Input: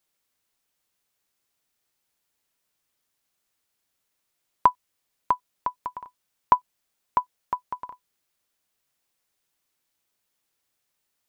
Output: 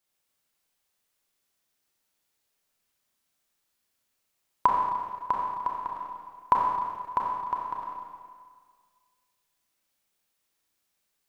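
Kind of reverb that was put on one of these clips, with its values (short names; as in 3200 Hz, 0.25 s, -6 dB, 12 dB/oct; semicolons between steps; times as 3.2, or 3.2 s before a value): Schroeder reverb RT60 1.8 s, combs from 29 ms, DRR -2 dB; gain -4 dB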